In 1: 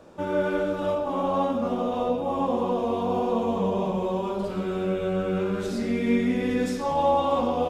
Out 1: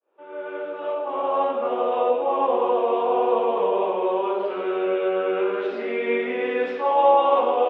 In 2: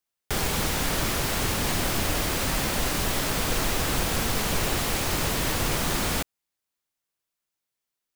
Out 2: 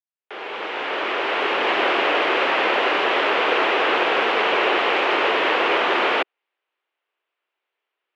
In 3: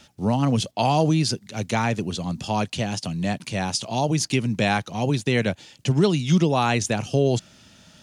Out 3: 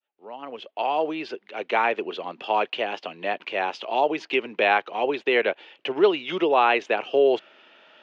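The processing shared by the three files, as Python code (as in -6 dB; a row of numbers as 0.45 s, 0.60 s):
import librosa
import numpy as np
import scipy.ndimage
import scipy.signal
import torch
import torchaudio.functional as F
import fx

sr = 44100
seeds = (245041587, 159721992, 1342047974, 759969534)

y = fx.fade_in_head(x, sr, length_s=1.84)
y = scipy.signal.sosfilt(scipy.signal.cheby1(3, 1.0, [380.0, 2900.0], 'bandpass', fs=sr, output='sos'), y)
y = y * 10.0 ** (-6 / 20.0) / np.max(np.abs(y))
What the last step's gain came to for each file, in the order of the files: +6.0 dB, +12.0 dB, +4.0 dB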